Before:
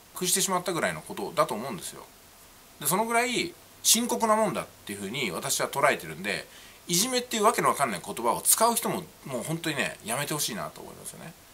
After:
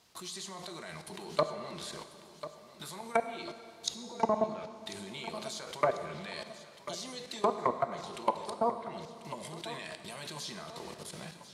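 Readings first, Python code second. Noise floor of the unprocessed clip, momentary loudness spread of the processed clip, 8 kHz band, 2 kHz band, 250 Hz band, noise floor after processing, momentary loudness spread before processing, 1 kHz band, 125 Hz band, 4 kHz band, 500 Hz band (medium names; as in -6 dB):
-53 dBFS, 13 LU, -18.5 dB, -13.0 dB, -10.0 dB, -54 dBFS, 16 LU, -7.5 dB, -10.0 dB, -10.5 dB, -6.0 dB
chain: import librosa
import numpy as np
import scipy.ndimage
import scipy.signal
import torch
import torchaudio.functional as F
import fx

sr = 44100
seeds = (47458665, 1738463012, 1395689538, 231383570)

y = 10.0 ** (-8.5 / 20.0) * np.tanh(x / 10.0 ** (-8.5 / 20.0))
y = fx.high_shelf(y, sr, hz=10000.0, db=-6.5)
y = fx.level_steps(y, sr, step_db=23)
y = fx.peak_eq(y, sr, hz=4500.0, db=7.5, octaves=1.0)
y = fx.env_lowpass_down(y, sr, base_hz=660.0, full_db=-24.0)
y = scipy.signal.sosfilt(scipy.signal.butter(2, 59.0, 'highpass', fs=sr, output='sos'), y)
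y = fx.echo_feedback(y, sr, ms=1043, feedback_pct=43, wet_db=-14.0)
y = fx.rev_plate(y, sr, seeds[0], rt60_s=2.2, hf_ratio=0.85, predelay_ms=0, drr_db=8.5)
y = F.gain(torch.from_numpy(y), 1.0).numpy()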